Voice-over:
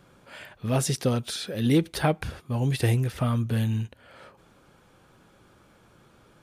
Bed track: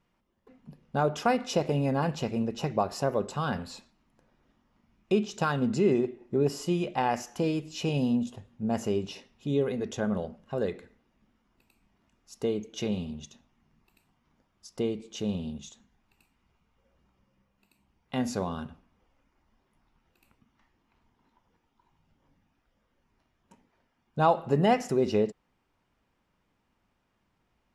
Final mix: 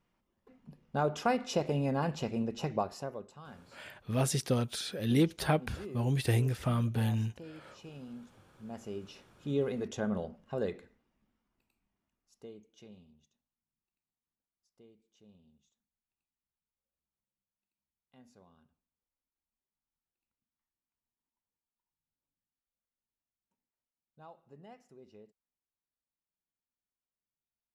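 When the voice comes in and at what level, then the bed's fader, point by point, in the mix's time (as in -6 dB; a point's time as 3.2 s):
3.45 s, -5.0 dB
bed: 2.76 s -4 dB
3.39 s -20 dB
8.33 s -20 dB
9.6 s -4 dB
10.69 s -4 dB
13.66 s -30 dB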